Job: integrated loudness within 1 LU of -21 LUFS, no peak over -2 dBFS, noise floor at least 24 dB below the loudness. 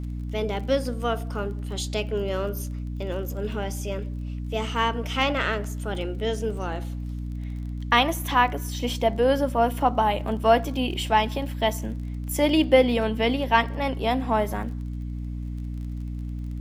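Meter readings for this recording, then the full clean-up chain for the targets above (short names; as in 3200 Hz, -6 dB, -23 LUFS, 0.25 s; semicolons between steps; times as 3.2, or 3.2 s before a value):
ticks 27/s; hum 60 Hz; harmonics up to 300 Hz; hum level -29 dBFS; loudness -25.5 LUFS; peak -4.0 dBFS; loudness target -21.0 LUFS
-> de-click; notches 60/120/180/240/300 Hz; gain +4.5 dB; limiter -2 dBFS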